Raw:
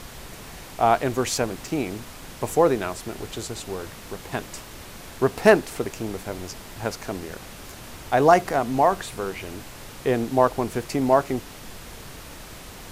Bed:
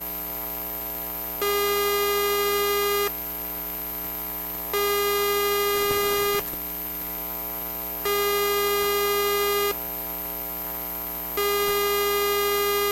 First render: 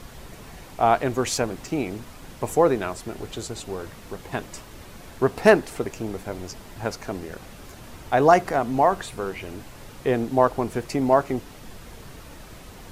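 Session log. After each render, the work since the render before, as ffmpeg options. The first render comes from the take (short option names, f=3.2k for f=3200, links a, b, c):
-af "afftdn=nr=6:nf=-42"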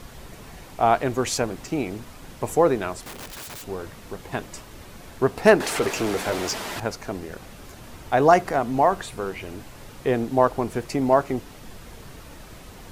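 -filter_complex "[0:a]asettb=1/sr,asplit=3[a][b][c];[a]atrim=end=3.014[d];[b]atrim=start=3.01:end=3.67,asetpts=PTS-STARTPTS,afade=t=in:d=0.004:c=qsin,afade=t=out:st=0.656:d=0.004:c=qsin,aeval=exprs='(mod(42.2*val(0)+1,2)-1)/42.2':c=same[e];[c]atrim=start=3.666[f];[d][e]acrossfade=d=0.004:c1=hsin:c2=qsin[g];[g][f]acrossfade=d=0.004:c1=qsin:c2=hsin,asettb=1/sr,asplit=3[h][i][j];[h]atrim=end=5.604[k];[i]atrim=start=5.6:end=6.8,asetpts=PTS-STARTPTS,afade=t=in:d=0.004:c=qsin,afade=t=out:st=1.196:d=0.004:c=qsin,asplit=2[l][m];[m]highpass=f=720:p=1,volume=23dB,asoftclip=type=tanh:threshold=-13.5dB[n];[l][n]amix=inputs=2:normalize=0,lowpass=f=6.1k:p=1,volume=-6dB[o];[j]atrim=start=6.796[p];[k][o]acrossfade=d=0.004:c1=hsin:c2=qsin[q];[q][p]acrossfade=d=0.004:c1=qsin:c2=hsin"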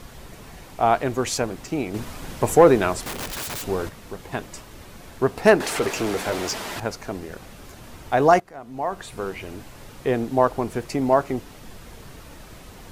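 -filter_complex "[0:a]asettb=1/sr,asplit=3[a][b][c];[a]atrim=end=1.944[d];[b]atrim=start=1.94:end=3.89,asetpts=PTS-STARTPTS,afade=t=in:d=0.004:c=qsin,afade=t=out:st=1.946:d=0.004:c=qsin,acontrast=73[e];[c]atrim=start=3.886[f];[d][e]acrossfade=d=0.004:c1=hsin:c2=qsin[g];[g][f]acrossfade=d=0.004:c1=qsin:c2=hsin,asplit=2[h][i];[h]atrim=end=8.4,asetpts=PTS-STARTPTS,afade=t=out:st=8.396:d=0.004:c=hsin:silence=0.11885[j];[i]atrim=start=8.4,asetpts=PTS-STARTPTS,afade=t=in:d=0.8:c=qua:silence=0.11885[k];[j][k]concat=n=2:v=0:a=1"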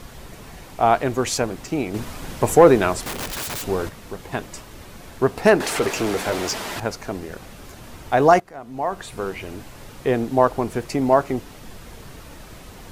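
-af "volume=2dB,alimiter=limit=-2dB:level=0:latency=1"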